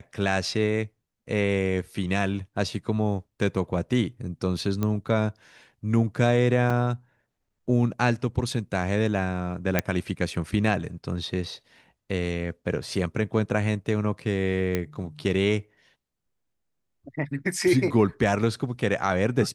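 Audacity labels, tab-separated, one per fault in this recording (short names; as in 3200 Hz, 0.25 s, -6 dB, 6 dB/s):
4.830000	4.830000	pop -14 dBFS
6.700000	6.700000	gap 3.4 ms
9.790000	9.790000	pop -7 dBFS
14.750000	14.750000	pop -12 dBFS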